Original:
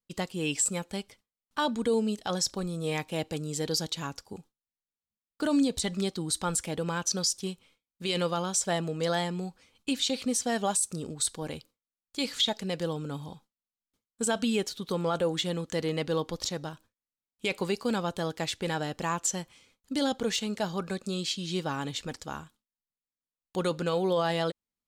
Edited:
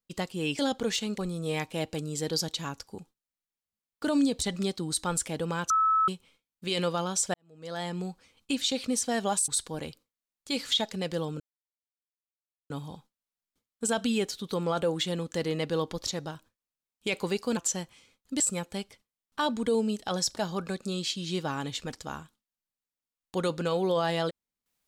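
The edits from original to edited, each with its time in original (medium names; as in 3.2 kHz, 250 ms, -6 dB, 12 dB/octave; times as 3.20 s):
0.59–2.56 s: swap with 19.99–20.58 s
7.08–7.46 s: bleep 1.3 kHz -20.5 dBFS
8.72–9.36 s: fade in quadratic
10.86–11.16 s: delete
13.08 s: insert silence 1.30 s
17.95–19.16 s: delete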